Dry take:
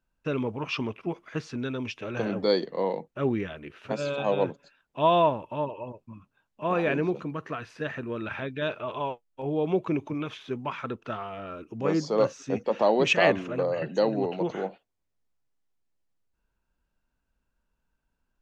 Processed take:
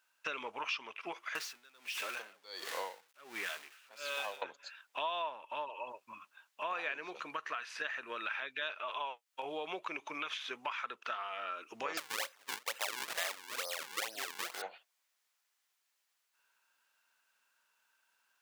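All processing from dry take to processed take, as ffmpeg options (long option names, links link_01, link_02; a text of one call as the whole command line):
ffmpeg -i in.wav -filter_complex "[0:a]asettb=1/sr,asplit=3[link_01][link_02][link_03];[link_01]atrim=end=1.354[link_04];[link_02]atrim=start=1.35:end=4.42,asetpts=PTS-STARTPTS,afade=type=in:duration=0.004:curve=qsin,afade=type=out:start_time=3.066:duration=0.004:curve=qsin,aeval=exprs='val(0)+0.5*0.0168*sgn(val(0))':channel_layout=same,aeval=exprs='val(0)*pow(10,-35*(0.5-0.5*cos(2*PI*1.4*n/s))/20)':channel_layout=same[link_05];[link_03]atrim=start=4.416[link_06];[link_04][link_05]acrossfade=duration=0.004:curve1=hsin:curve2=qsin[link_07];[link_07][link_06]acrossfade=duration=0.004:curve1=qsin:curve2=hsin,asettb=1/sr,asplit=3[link_08][link_09][link_10];[link_08]atrim=end=11.974[link_11];[link_09]atrim=start=11.97:end=14.62,asetpts=PTS-STARTPTS,afade=type=in:duration=0.004:curve=qsin,afade=type=out:start_time=2.646:duration=0.004:curve=qsin,lowpass=4300,acrusher=samples=40:mix=1:aa=0.000001:lfo=1:lforange=64:lforate=2.2[link_12];[link_10]atrim=start=14.616[link_13];[link_11][link_12]acrossfade=duration=0.004:curve1=hsin:curve2=qsin[link_14];[link_14][link_13]acrossfade=duration=0.004:curve1=qsin:curve2=hsin,highpass=1300,acompressor=threshold=-51dB:ratio=4,volume=12.5dB" out.wav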